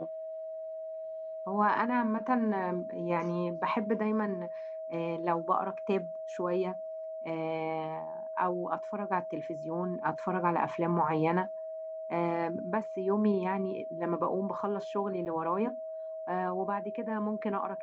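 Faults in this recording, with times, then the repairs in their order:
whine 640 Hz -37 dBFS
15.25–15.26 s: dropout 9.4 ms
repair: band-stop 640 Hz, Q 30; interpolate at 15.25 s, 9.4 ms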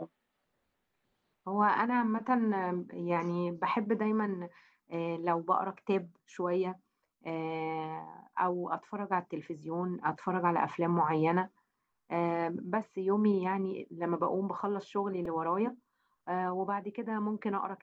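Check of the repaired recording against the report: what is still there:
nothing left

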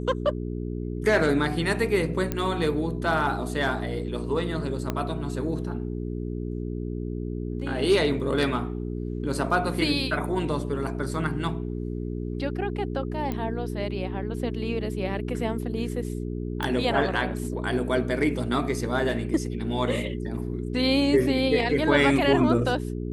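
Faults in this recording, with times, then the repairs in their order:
hum 60 Hz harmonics 7 -31 dBFS
2.32 s: pop -13 dBFS
4.90 s: pop -13 dBFS
13.32 s: pop -17 dBFS
16.63 s: pop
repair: de-click; de-hum 60 Hz, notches 7

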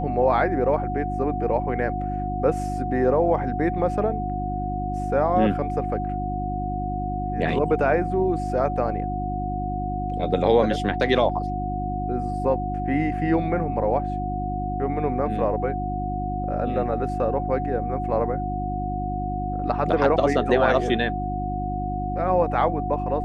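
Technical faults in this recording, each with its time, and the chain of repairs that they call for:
hum 50 Hz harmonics 7 -29 dBFS
whine 730 Hz -28 dBFS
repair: de-hum 50 Hz, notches 7; band-stop 730 Hz, Q 30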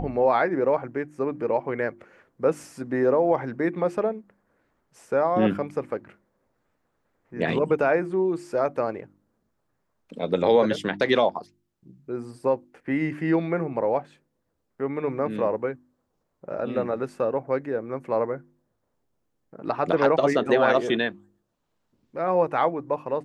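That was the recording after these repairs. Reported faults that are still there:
nothing left

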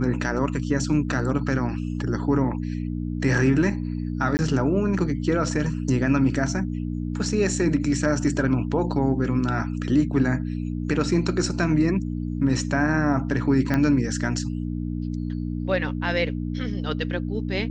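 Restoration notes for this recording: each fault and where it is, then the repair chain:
hum 60 Hz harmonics 5 -28 dBFS
4.37–4.39 s: dropout 19 ms
13.74 s: pop -11 dBFS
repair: de-click; de-hum 60 Hz, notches 5; interpolate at 4.37 s, 19 ms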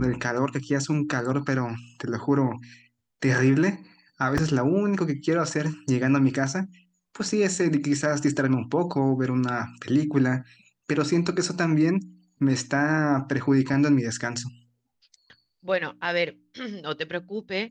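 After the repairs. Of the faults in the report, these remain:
13.74 s: pop

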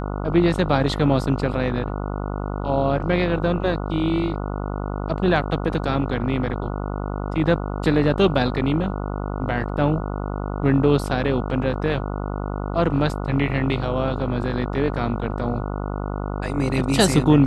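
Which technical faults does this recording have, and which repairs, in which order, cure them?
buzz 50 Hz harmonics 29 -27 dBFS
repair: de-hum 50 Hz, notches 29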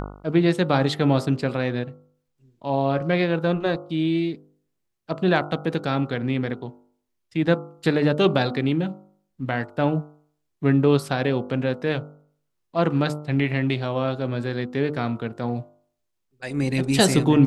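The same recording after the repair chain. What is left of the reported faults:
nothing left

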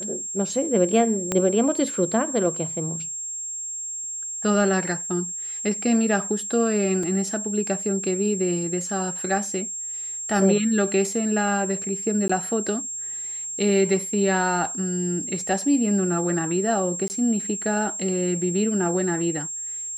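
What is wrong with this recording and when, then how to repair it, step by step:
whine 7.5 kHz -29 dBFS
1.32 s: pop -9 dBFS
7.03 s: dropout 3.4 ms
12.28–12.29 s: dropout 15 ms
17.08–17.10 s: dropout 19 ms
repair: de-click; band-stop 7.5 kHz, Q 30; interpolate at 7.03 s, 3.4 ms; interpolate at 12.28 s, 15 ms; interpolate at 17.08 s, 19 ms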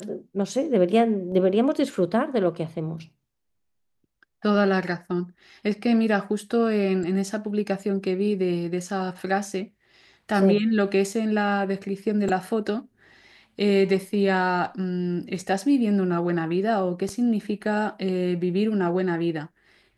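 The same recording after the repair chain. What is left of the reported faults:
1.32 s: pop

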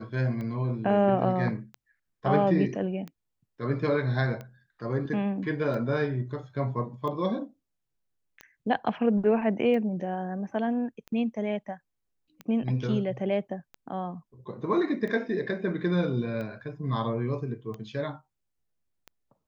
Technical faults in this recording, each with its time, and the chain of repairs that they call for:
tick 45 rpm -26 dBFS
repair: de-click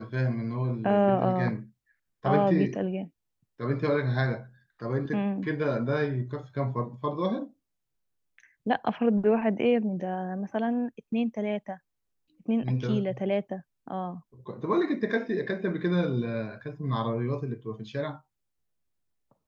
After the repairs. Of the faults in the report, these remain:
nothing left

